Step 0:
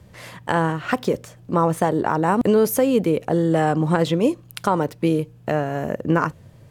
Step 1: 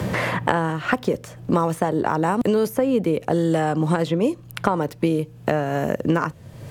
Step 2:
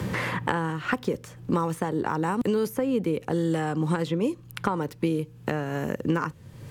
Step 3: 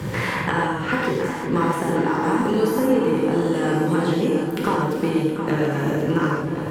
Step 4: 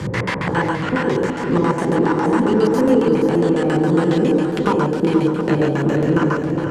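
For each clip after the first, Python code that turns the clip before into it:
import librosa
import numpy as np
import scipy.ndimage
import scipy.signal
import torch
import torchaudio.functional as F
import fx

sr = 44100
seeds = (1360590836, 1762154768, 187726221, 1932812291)

y1 = fx.band_squash(x, sr, depth_pct=100)
y1 = F.gain(torch.from_numpy(y1), -2.0).numpy()
y2 = fx.peak_eq(y1, sr, hz=650.0, db=-11.0, octaves=0.33)
y2 = F.gain(torch.from_numpy(y2), -4.5).numpy()
y3 = fx.echo_opening(y2, sr, ms=359, hz=750, octaves=2, feedback_pct=70, wet_db=-6)
y3 = fx.rev_gated(y3, sr, seeds[0], gate_ms=190, shape='flat', drr_db=-4.0)
y4 = fx.filter_lfo_lowpass(y3, sr, shape='square', hz=7.3, low_hz=530.0, high_hz=7200.0, q=0.99)
y4 = y4 + 10.0 ** (-9.5 / 20.0) * np.pad(y4, (int(474 * sr / 1000.0), 0))[:len(y4)]
y4 = F.gain(torch.from_numpy(y4), 3.5).numpy()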